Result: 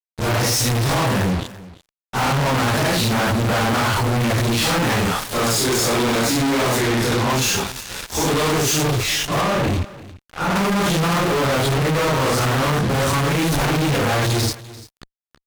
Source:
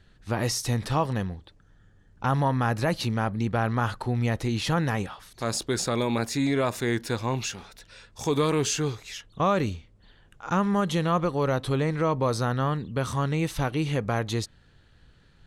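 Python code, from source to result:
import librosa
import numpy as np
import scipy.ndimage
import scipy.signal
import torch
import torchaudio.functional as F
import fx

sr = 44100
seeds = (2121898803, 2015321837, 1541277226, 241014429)

y = fx.phase_scramble(x, sr, seeds[0], window_ms=200)
y = fx.peak_eq(y, sr, hz=140.0, db=-12.0, octaves=0.41, at=(4.48, 4.95))
y = fx.fuzz(y, sr, gain_db=50.0, gate_db=-46.0)
y = fx.high_shelf(y, sr, hz=3500.0, db=-8.0, at=(9.41, 10.56))
y = y + 10.0 ** (-18.5 / 20.0) * np.pad(y, (int(343 * sr / 1000.0), 0))[:len(y)]
y = fx.resample_linear(y, sr, factor=2, at=(6.78, 7.3))
y = y * librosa.db_to_amplitude(-4.5)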